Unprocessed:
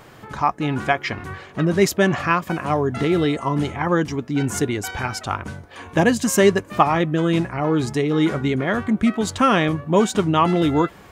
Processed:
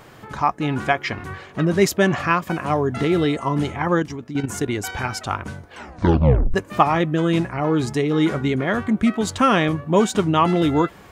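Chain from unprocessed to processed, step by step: 3.99–4.68 level quantiser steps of 10 dB; 5.69 tape stop 0.85 s

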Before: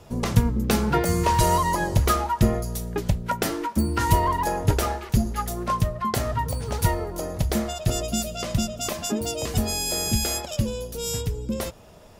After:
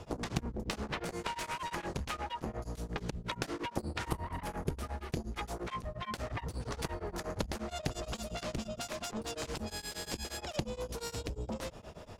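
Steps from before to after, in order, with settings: 1.13–1.73 tone controls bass -12 dB, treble -1 dB; 4.08–5.14 spectral gain 310–8200 Hz -7 dB; compressor 6:1, threshold -31 dBFS, peak gain reduction 18 dB; added harmonics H 7 -9 dB, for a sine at -16.5 dBFS; air absorption 51 m; beating tremolo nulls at 8.5 Hz

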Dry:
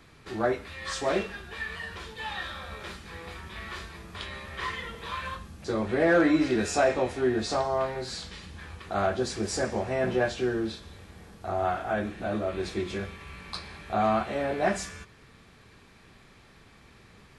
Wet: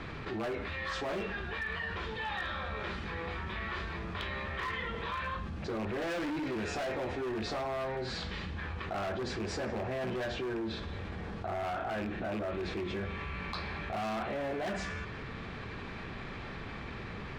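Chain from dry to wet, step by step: rattling part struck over -30 dBFS, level -27 dBFS; LPF 3000 Hz 12 dB/oct; hard clip -28 dBFS, distortion -6 dB; fast leveller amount 70%; gain -5.5 dB

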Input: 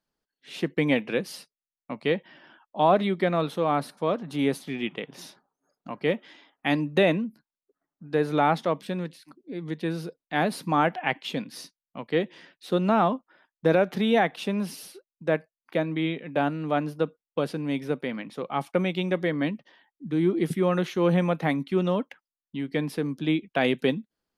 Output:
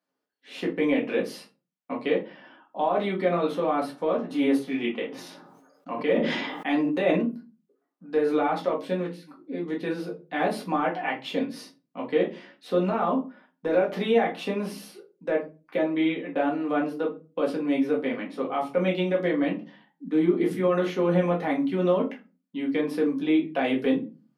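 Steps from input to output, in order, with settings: HPF 270 Hz 12 dB/oct; high shelf 2900 Hz -8.5 dB; limiter -20 dBFS, peak gain reduction 10.5 dB; shoebox room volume 120 m³, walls furnished, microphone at 1.9 m; 5.08–7.26 sustainer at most 36 dB/s

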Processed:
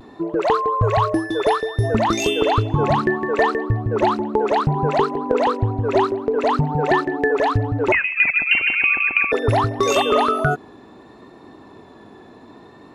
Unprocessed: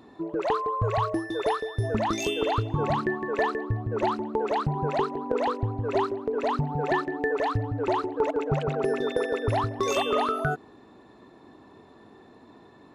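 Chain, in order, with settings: vibrato 0.64 Hz 27 cents; 7.92–9.32 inverted band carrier 2900 Hz; gain +8 dB

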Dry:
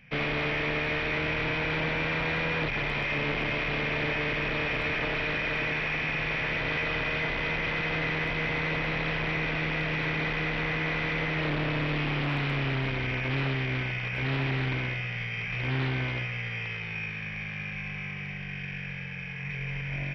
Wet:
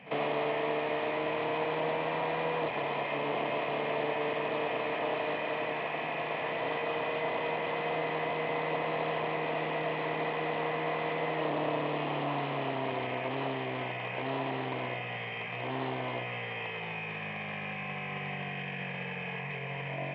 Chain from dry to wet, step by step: limiter -33.5 dBFS, peak gain reduction 11.5 dB; vocal rider; speaker cabinet 230–3200 Hz, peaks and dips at 470 Hz +4 dB, 690 Hz +10 dB, 990 Hz +7 dB, 1500 Hz -10 dB, 2300 Hz -8 dB; reverse echo 49 ms -16.5 dB; gain +8.5 dB

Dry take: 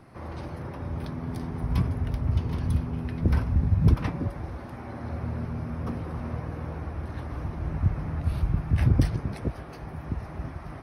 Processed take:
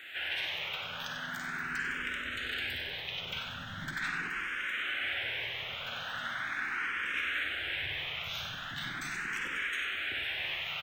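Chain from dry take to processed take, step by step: HPF 1000 Hz 6 dB/oct; limiter -34 dBFS, peak gain reduction 10 dB; reverb RT60 0.45 s, pre-delay 41 ms, DRR 2.5 dB; formant shift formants +6 st; high shelf 5100 Hz +10.5 dB; frequency-shifting echo 95 ms, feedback 53%, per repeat -64 Hz, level -8.5 dB; vocal rider 2 s; band shelf 2300 Hz +16 dB; endless phaser +0.4 Hz; gain -2 dB

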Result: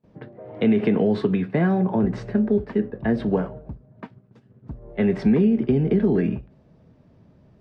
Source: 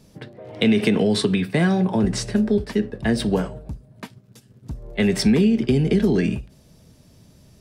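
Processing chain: gate with hold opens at -44 dBFS; LPF 1500 Hz 12 dB/oct; low shelf 79 Hz -9 dB; Vorbis 64 kbps 32000 Hz

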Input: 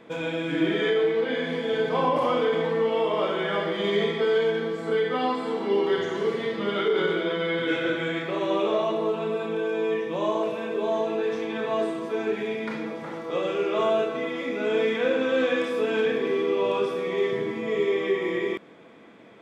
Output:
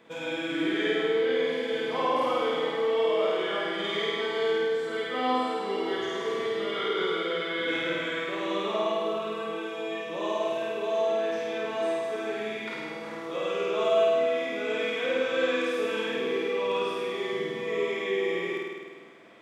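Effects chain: tilt +1.5 dB/oct; flutter echo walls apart 8.8 m, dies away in 1.5 s; gain -6 dB

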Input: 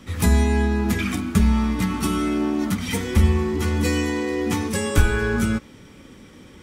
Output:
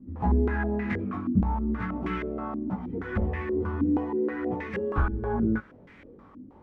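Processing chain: self-modulated delay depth 0.26 ms; in parallel at -7.5 dB: requantised 6-bit, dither triangular; on the sum: chorus 0.41 Hz, delay 15 ms, depth 6.2 ms; stepped low-pass 6.3 Hz 270–2000 Hz; gain -9 dB

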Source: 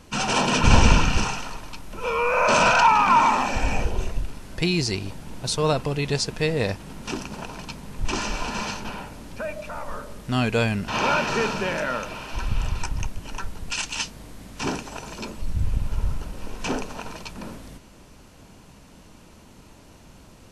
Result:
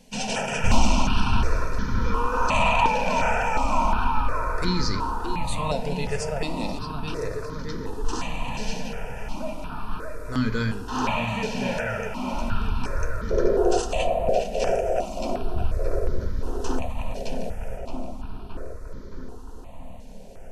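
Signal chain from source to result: overloaded stage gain 7 dB; painted sound noise, 13.3–13.81, 340–760 Hz -14 dBFS; darkening echo 0.62 s, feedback 73%, low-pass 2600 Hz, level -4 dB; on a send at -6.5 dB: reverb RT60 0.90 s, pre-delay 4 ms; on the sum: step phaser 2.8 Hz 330–2700 Hz; gain -2.5 dB

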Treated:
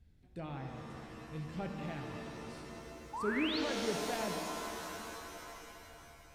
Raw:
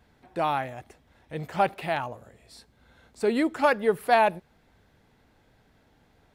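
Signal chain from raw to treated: treble ducked by the level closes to 2400 Hz, closed at -23 dBFS; passive tone stack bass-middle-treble 10-0-1; painted sound rise, 3.13–3.59, 820–4700 Hz -49 dBFS; shimmer reverb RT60 3.4 s, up +7 st, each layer -2 dB, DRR 3 dB; gain +9 dB

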